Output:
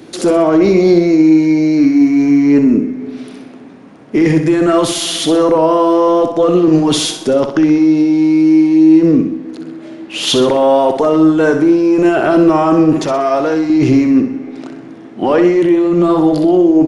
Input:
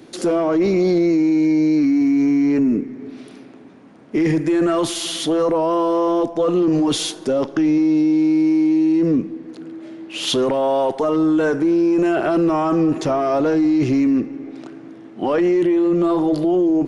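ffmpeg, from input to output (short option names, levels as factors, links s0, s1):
-filter_complex "[0:a]asettb=1/sr,asplit=3[s0][s1][s2];[s0]atrim=end=13.044[s3];[s1]atrim=start=13.04:end=13.7,asetpts=PTS-STARTPTS,afade=t=in:d=0.004:c=qsin,afade=t=out:st=0.656:d=0.004:c=qsin,lowshelf=f=420:g=-9[s4];[s2]atrim=start=13.696[s5];[s3][s4]acrossfade=d=0.004:c1=hsin:c2=qsin[s6];[s6][s5]acrossfade=d=0.004:c1=qsin:c2=hsin,aecho=1:1:63|126|189|252|315:0.376|0.165|0.0728|0.032|0.0141,volume=2.11"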